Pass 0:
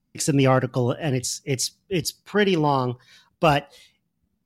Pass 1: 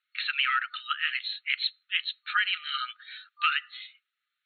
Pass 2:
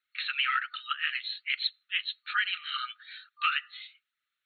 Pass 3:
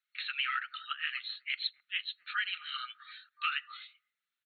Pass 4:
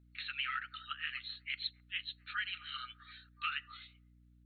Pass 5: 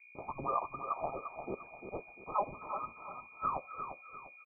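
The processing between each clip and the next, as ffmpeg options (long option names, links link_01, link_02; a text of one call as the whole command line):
ffmpeg -i in.wav -af "afftfilt=real='re*between(b*sr/4096,1200,4300)':imag='im*between(b*sr/4096,1200,4300)':win_size=4096:overlap=0.75,acompressor=threshold=-31dB:ratio=10,volume=9dB" out.wav
ffmpeg -i in.wav -af "flanger=delay=0.5:depth=9.7:regen=-27:speed=1.2:shape=sinusoidal,volume=1.5dB" out.wav
ffmpeg -i in.wav -filter_complex "[0:a]acrossover=split=820[link_01][link_02];[link_01]adelay=260[link_03];[link_03][link_02]amix=inputs=2:normalize=0,volume=-4.5dB" out.wav
ffmpeg -i in.wav -af "aeval=exprs='val(0)+0.00126*(sin(2*PI*60*n/s)+sin(2*PI*2*60*n/s)/2+sin(2*PI*3*60*n/s)/3+sin(2*PI*4*60*n/s)/4+sin(2*PI*5*60*n/s)/5)':channel_layout=same,volume=-4.5dB" out.wav
ffmpeg -i in.wav -af "aecho=1:1:348|696|1044|1392:0.398|0.147|0.0545|0.0202,lowpass=frequency=2100:width_type=q:width=0.5098,lowpass=frequency=2100:width_type=q:width=0.6013,lowpass=frequency=2100:width_type=q:width=0.9,lowpass=frequency=2100:width_type=q:width=2.563,afreqshift=-2500,volume=6dB" out.wav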